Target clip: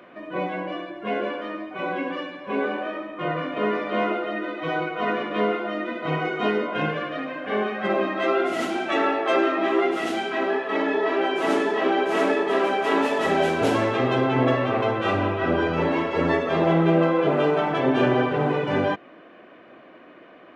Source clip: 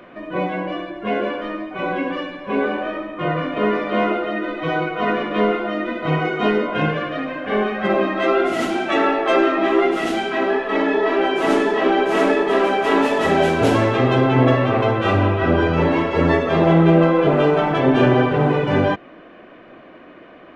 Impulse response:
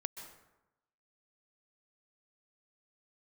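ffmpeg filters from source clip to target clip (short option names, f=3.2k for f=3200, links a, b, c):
-af "highpass=f=190:p=1,volume=-4dB"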